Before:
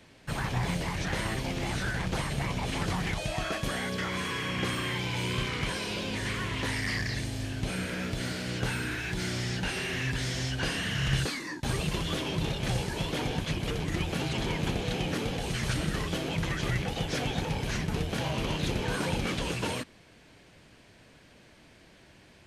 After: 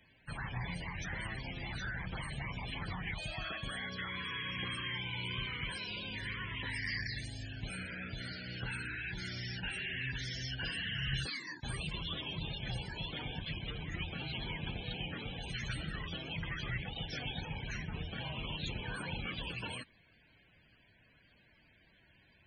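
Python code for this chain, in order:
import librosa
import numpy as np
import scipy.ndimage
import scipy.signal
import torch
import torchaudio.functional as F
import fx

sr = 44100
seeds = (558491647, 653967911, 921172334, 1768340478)

y = fx.spec_topn(x, sr, count=64)
y = fx.tone_stack(y, sr, knobs='5-5-5')
y = y * 10.0 ** (5.5 / 20.0)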